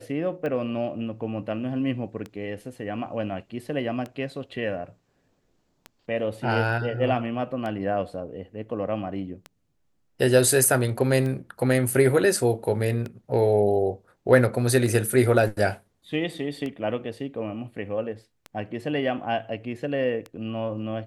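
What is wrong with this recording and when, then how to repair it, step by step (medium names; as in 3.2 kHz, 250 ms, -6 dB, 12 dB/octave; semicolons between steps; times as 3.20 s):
tick 33 1/3 rpm -21 dBFS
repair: de-click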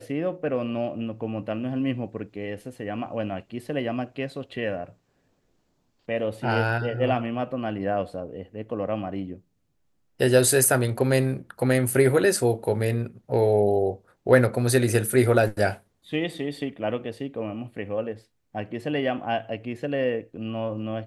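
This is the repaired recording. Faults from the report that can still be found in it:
nothing left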